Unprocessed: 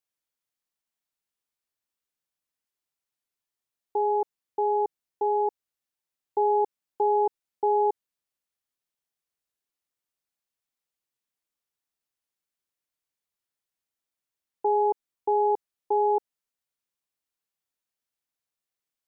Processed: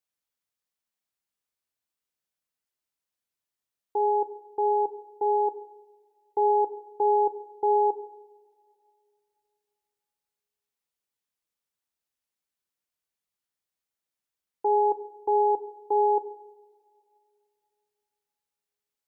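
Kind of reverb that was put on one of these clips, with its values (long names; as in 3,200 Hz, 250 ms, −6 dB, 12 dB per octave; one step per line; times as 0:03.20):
coupled-rooms reverb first 0.87 s, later 2.9 s, DRR 10 dB
level −1 dB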